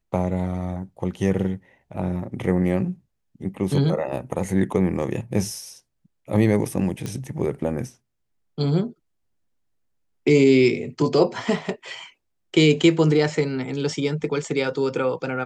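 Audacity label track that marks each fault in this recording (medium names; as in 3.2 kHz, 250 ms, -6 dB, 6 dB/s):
7.060000	7.060000	pop -16 dBFS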